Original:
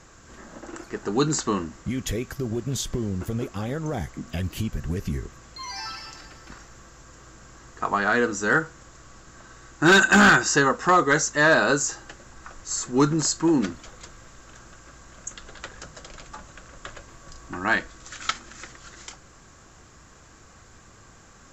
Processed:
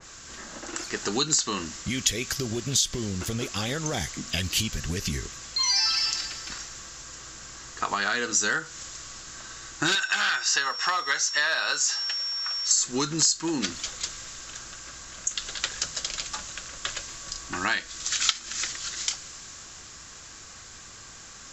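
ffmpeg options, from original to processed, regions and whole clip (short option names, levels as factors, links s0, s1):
-filter_complex "[0:a]asettb=1/sr,asplit=3[s0][s1][s2];[s0]atrim=end=9.954[s3];[s1]atrim=start=9.95:end=12.71,asetpts=PTS-STARTPTS,afade=t=in:d=0.004:c=qsin,afade=t=out:st=2.756:d=0.004:c=qsin,aeval=exprs='val(0)+0.0141*sin(2*PI*5500*n/s)':c=same,acrusher=bits=8:mode=log:mix=0:aa=0.000001,acrossover=split=600 4200:gain=0.141 1 0.251[s4][s5][s6];[s4][s5][s6]amix=inputs=3:normalize=0[s7];[s2]atrim=start=12.706[s8];[s3][s7]acrossfade=d=0.004:c1=hsin:c2=qsin[s9];[s9][s8]acrossfade=d=0.004:c1=qsin:c2=hsin,equalizer=f=4800:w=0.42:g=15,acompressor=threshold=0.0794:ratio=10,adynamicequalizer=threshold=0.0126:dfrequency=2100:dqfactor=0.7:tfrequency=2100:tqfactor=0.7:attack=5:release=100:ratio=0.375:range=2.5:mode=boostabove:tftype=highshelf,volume=0.794"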